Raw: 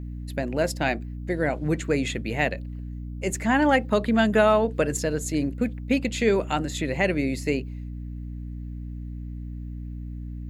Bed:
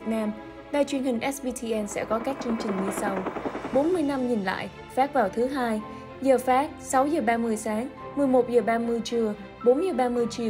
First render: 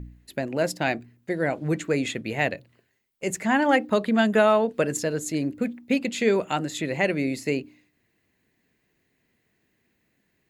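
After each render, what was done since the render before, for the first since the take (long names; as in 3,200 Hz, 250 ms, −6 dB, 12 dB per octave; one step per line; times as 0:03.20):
hum removal 60 Hz, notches 5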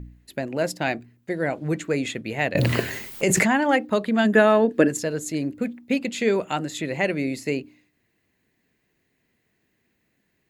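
0:02.55–0:03.56: envelope flattener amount 100%
0:04.24–0:04.87: hollow resonant body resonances 300/1,700 Hz, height 10 dB → 14 dB, ringing for 25 ms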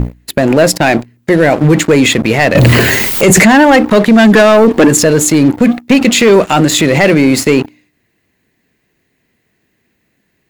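leveller curve on the samples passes 3
boost into a limiter +15 dB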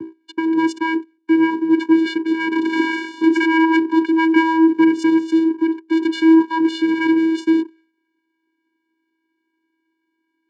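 Chebyshev low-pass with heavy ripple 5,700 Hz, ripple 9 dB
channel vocoder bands 8, square 324 Hz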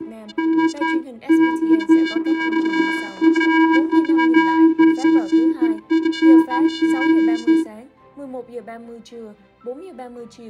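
mix in bed −10.5 dB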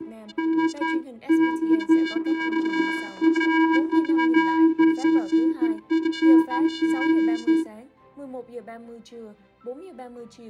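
level −5 dB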